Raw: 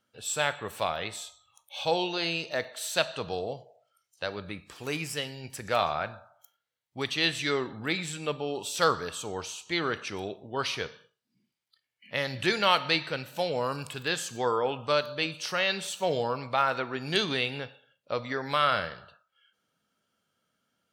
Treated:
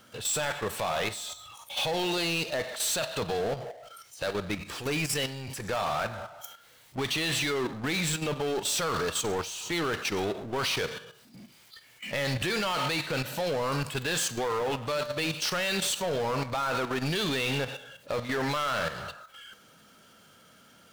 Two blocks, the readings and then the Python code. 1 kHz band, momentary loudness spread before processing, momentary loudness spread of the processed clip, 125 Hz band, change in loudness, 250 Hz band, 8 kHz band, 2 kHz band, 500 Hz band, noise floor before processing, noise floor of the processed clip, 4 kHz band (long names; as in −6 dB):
−2.0 dB, 11 LU, 10 LU, +4.0 dB, 0.0 dB, +2.5 dB, +6.0 dB, −0.5 dB, 0.0 dB, −83 dBFS, −57 dBFS, 0.0 dB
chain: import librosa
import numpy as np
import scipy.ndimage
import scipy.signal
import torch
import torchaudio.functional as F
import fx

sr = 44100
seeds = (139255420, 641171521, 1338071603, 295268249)

y = fx.level_steps(x, sr, step_db=19)
y = fx.power_curve(y, sr, exponent=0.5)
y = y * 10.0 ** (2.0 / 20.0)